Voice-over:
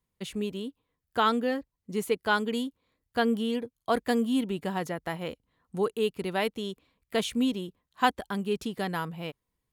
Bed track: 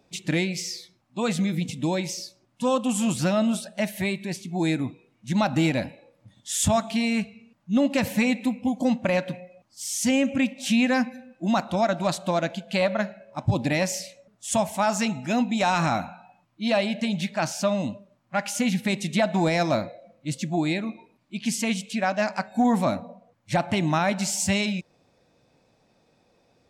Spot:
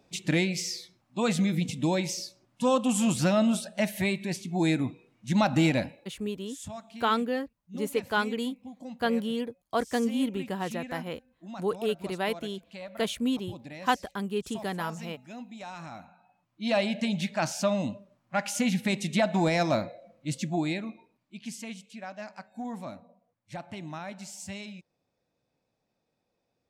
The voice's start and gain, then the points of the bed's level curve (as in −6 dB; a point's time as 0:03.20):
5.85 s, −1.5 dB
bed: 0:05.78 −1 dB
0:06.53 −19 dB
0:15.91 −19 dB
0:16.78 −2.5 dB
0:20.45 −2.5 dB
0:21.87 −16 dB